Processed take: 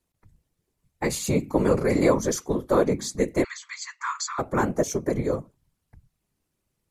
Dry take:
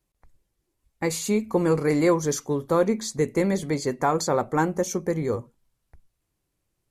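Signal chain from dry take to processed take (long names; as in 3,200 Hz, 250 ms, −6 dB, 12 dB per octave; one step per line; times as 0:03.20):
0:03.44–0:04.39: linear-phase brick-wall band-pass 1,000–8,000 Hz
random phases in short frames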